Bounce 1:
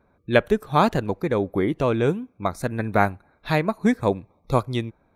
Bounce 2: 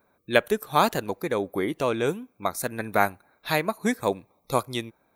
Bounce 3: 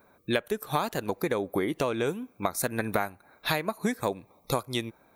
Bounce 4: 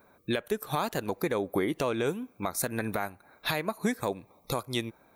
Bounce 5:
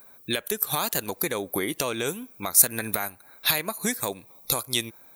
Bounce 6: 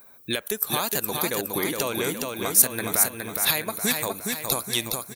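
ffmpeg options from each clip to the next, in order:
ffmpeg -i in.wav -af "aemphasis=mode=production:type=bsi,volume=-1.5dB" out.wav
ffmpeg -i in.wav -af "acompressor=threshold=-30dB:ratio=10,volume=6dB" out.wav
ffmpeg -i in.wav -af "alimiter=limit=-17dB:level=0:latency=1:release=26" out.wav
ffmpeg -i in.wav -af "crystalizer=i=5.5:c=0,volume=-1.5dB" out.wav
ffmpeg -i in.wav -af "aecho=1:1:415|830|1245|1660|2075|2490:0.631|0.315|0.158|0.0789|0.0394|0.0197" out.wav

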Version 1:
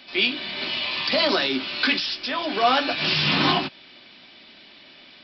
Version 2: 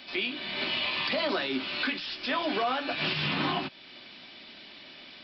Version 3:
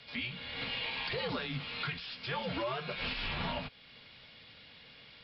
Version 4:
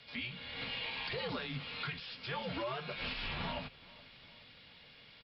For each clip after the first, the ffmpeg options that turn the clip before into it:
ffmpeg -i in.wav -filter_complex "[0:a]acrossover=split=3900[link_01][link_02];[link_02]acompressor=threshold=-44dB:ratio=4:attack=1:release=60[link_03];[link_01][link_03]amix=inputs=2:normalize=0,alimiter=limit=-19.5dB:level=0:latency=1:release=432" out.wav
ffmpeg -i in.wav -af "afreqshift=-120,volume=-7dB" out.wav
ffmpeg -i in.wav -af "aecho=1:1:421|842|1263|1684:0.0794|0.0461|0.0267|0.0155,volume=-3dB" out.wav

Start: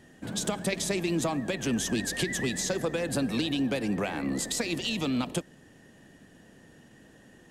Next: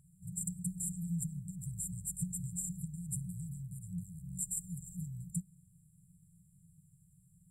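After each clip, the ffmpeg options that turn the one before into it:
ffmpeg -i in.wav -af "afftfilt=real='re*(1-between(b*sr/4096,190,7200))':imag='im*(1-between(b*sr/4096,190,7200))':win_size=4096:overlap=0.75,bass=frequency=250:gain=-15,treble=frequency=4000:gain=-12,volume=10dB" out.wav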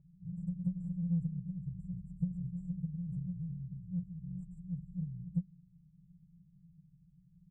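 ffmpeg -i in.wav -af "aecho=1:1:5.2:0.67,adynamicsmooth=sensitivity=0.5:basefreq=560,volume=1dB" out.wav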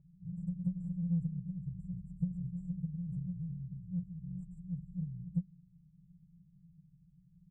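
ffmpeg -i in.wav -af anull out.wav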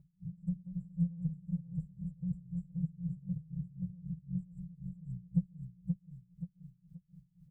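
ffmpeg -i in.wav -filter_complex "[0:a]asplit=2[link_01][link_02];[link_02]aecho=0:1:529|1058|1587|2116|2645|3174:0.631|0.309|0.151|0.0742|0.0364|0.0178[link_03];[link_01][link_03]amix=inputs=2:normalize=0,aeval=exprs='val(0)*pow(10,-22*(0.5-0.5*cos(2*PI*3.9*n/s))/20)':channel_layout=same,volume=4dB" out.wav

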